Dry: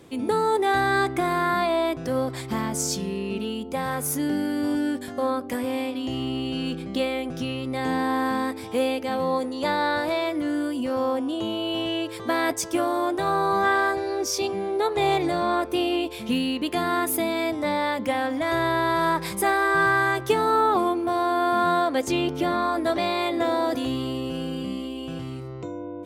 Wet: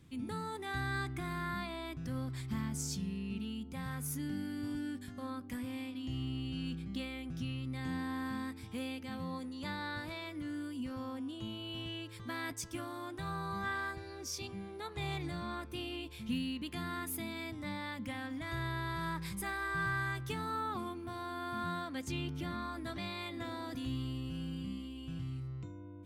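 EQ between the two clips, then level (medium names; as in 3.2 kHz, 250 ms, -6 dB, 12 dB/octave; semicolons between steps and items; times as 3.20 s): amplifier tone stack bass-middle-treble 6-0-2; peaking EQ 400 Hz -8.5 dB 1 oct; treble shelf 2.1 kHz -11 dB; +11.5 dB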